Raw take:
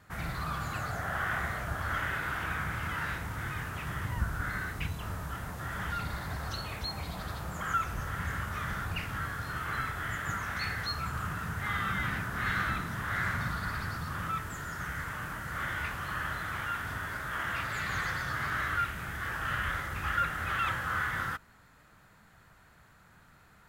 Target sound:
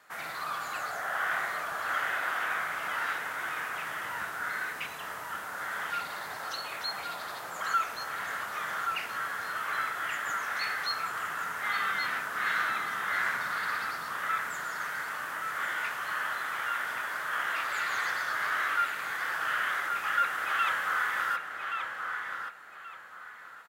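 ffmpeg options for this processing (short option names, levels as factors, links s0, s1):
-filter_complex "[0:a]highpass=540,asplit=2[s0][s1];[s1]adelay=1127,lowpass=f=3900:p=1,volume=0.562,asplit=2[s2][s3];[s3]adelay=1127,lowpass=f=3900:p=1,volume=0.29,asplit=2[s4][s5];[s5]adelay=1127,lowpass=f=3900:p=1,volume=0.29,asplit=2[s6][s7];[s7]adelay=1127,lowpass=f=3900:p=1,volume=0.29[s8];[s2][s4][s6][s8]amix=inputs=4:normalize=0[s9];[s0][s9]amix=inputs=2:normalize=0,volume=1.33"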